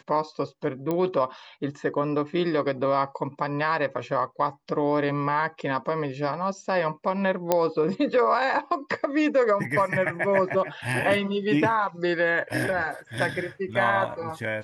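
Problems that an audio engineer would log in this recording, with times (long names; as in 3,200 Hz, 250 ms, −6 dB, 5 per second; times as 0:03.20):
0:00.91: click −15 dBFS
0:07.52: click −7 dBFS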